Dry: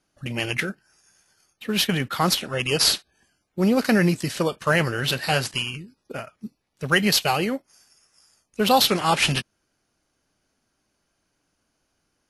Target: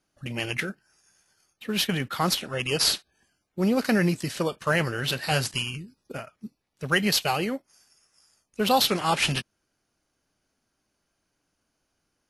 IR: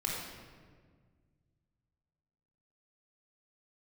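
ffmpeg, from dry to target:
-filter_complex "[0:a]asettb=1/sr,asplit=3[s0][s1][s2];[s0]atrim=end=5.314[s3];[s1]atrim=start=5.31:end=6.18,asetpts=PTS-STARTPTS,afade=t=in:d=0.004:c=qsin,afade=t=out:st=0.866:d=0.004:c=qsin,bass=f=250:g=4,treble=f=4000:g=4[s4];[s2]atrim=start=6.176[s5];[s3][s4]acrossfade=d=0.004:c1=hsin:c2=qsin[s6];[s6][s5]acrossfade=d=0.004:c1=qsin:c2=hsin,volume=0.668"

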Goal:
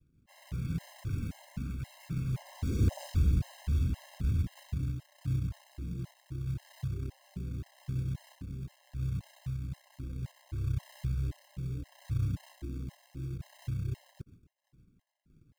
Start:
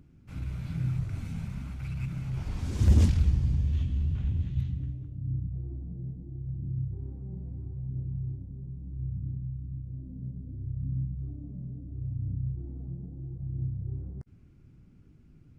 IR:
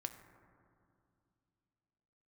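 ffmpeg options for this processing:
-filter_complex "[0:a]agate=range=0.0224:threshold=0.00398:ratio=3:detection=peak,adynamicequalizer=threshold=0.00501:dfrequency=310:dqfactor=0.85:tfrequency=310:tqfactor=0.85:attack=5:release=100:ratio=0.375:range=2.5:mode=boostabove:tftype=bell,asettb=1/sr,asplit=3[s0][s1][s2];[s0]atrim=end=10.034[s3];[s1]atrim=start=10.03:end=12.26,asetpts=PTS-STARTPTS,afade=t=in:d=0.004:c=qsin,afade=t=out:st=2.226:d=0.004:c=qsin,aecho=1:1:2.2:0.94,atrim=end_sample=98343[s4];[s2]atrim=start=12.256[s5];[s3][s4]acrossfade=d=0.004:c1=hsin:c2=qsin[s6];[s6][s5]acrossfade=d=0.004:c1=qsin:c2=hsin,acrusher=bits=5:mode=log:mix=0:aa=0.000001,asoftclip=type=tanh:threshold=0.119,afftfilt=real='re*gt(sin(2*PI*1.9*pts/sr)*(1-2*mod(floor(b*sr/1024/540),2)),0)':imag='im*gt(sin(2*PI*1.9*pts/sr)*(1-2*mod(floor(b*sr/1024/540),2)),0)':win_size=1024:overlap=0.75"

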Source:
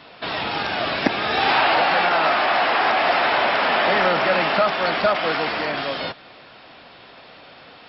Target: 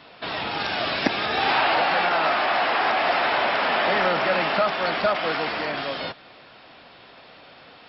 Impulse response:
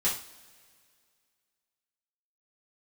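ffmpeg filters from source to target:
-filter_complex "[0:a]asettb=1/sr,asplit=3[s0][s1][s2];[s0]atrim=end=0.604[s3];[s1]atrim=start=0.6:end=1.26,asetpts=PTS-STARTPTS,afade=t=in:d=0.004:c=qsin,afade=t=out:st=0.656:d=0.004:c=qsin,highshelf=f=3900:g=6.5[s4];[s2]atrim=start=1.256[s5];[s3][s4]acrossfade=d=0.004:c1=hsin:c2=qsin[s6];[s6][s5]acrossfade=d=0.004:c1=qsin:c2=hsin,volume=0.708"

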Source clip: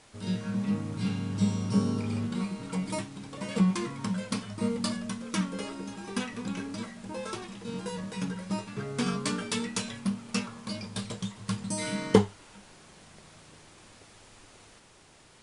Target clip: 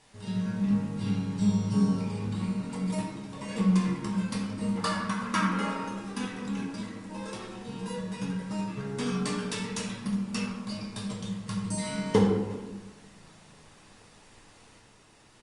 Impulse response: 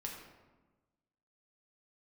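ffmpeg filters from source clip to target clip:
-filter_complex "[0:a]asettb=1/sr,asplit=3[s0][s1][s2];[s0]atrim=end=4.774[s3];[s1]atrim=start=4.77:end=5.89,asetpts=PTS-STARTPTS,afade=t=in:d=0.004:c=qsin,afade=t=out:st=1.116:d=0.004:c=qsin,equalizer=f=1300:t=o:w=1.6:g=14[s4];[s2]atrim=start=5.886[s5];[s3][s4]acrossfade=d=0.004:c1=hsin:c2=qsin[s6];[s6][s5]acrossfade=d=0.004:c1=qsin:c2=hsin,aecho=1:1:364:0.0794[s7];[1:a]atrim=start_sample=2205[s8];[s7][s8]afir=irnorm=-1:irlink=0" -ar 48000 -c:a libopus -b:a 48k

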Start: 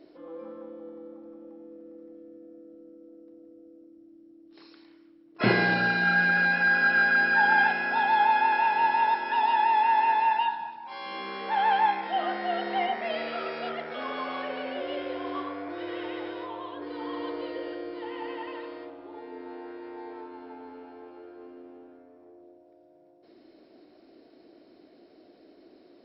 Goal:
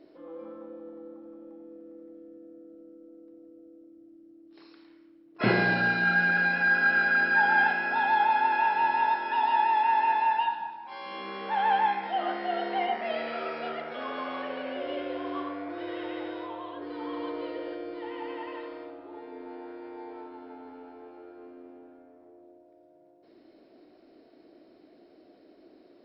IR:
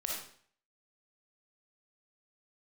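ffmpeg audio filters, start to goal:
-filter_complex "[0:a]asplit=2[s0][s1];[1:a]atrim=start_sample=2205,lowpass=3800[s2];[s1][s2]afir=irnorm=-1:irlink=0,volume=0.422[s3];[s0][s3]amix=inputs=2:normalize=0,volume=0.631"

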